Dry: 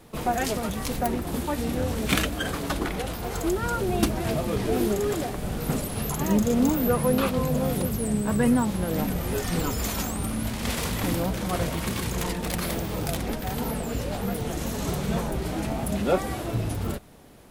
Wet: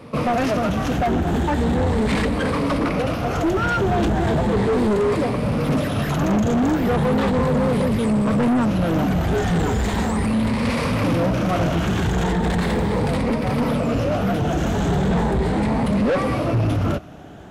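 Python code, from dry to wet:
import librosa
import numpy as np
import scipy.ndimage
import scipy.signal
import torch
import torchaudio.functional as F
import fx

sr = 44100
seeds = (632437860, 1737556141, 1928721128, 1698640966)

p1 = fx.spec_ripple(x, sr, per_octave=0.94, drift_hz=0.37, depth_db=9)
p2 = scipy.signal.sosfilt(scipy.signal.butter(2, 64.0, 'highpass', fs=sr, output='sos'), p1)
p3 = fx.high_shelf(p2, sr, hz=6400.0, db=8.5)
p4 = fx.notch(p3, sr, hz=360.0, q=12.0)
p5 = fx.sample_hold(p4, sr, seeds[0], rate_hz=7000.0, jitter_pct=0)
p6 = p4 + (p5 * 10.0 ** (-6.0 / 20.0))
p7 = np.clip(10.0 ** (24.0 / 20.0) * p6, -1.0, 1.0) / 10.0 ** (24.0 / 20.0)
p8 = fx.spacing_loss(p7, sr, db_at_10k=21)
y = p8 * 10.0 ** (8.5 / 20.0)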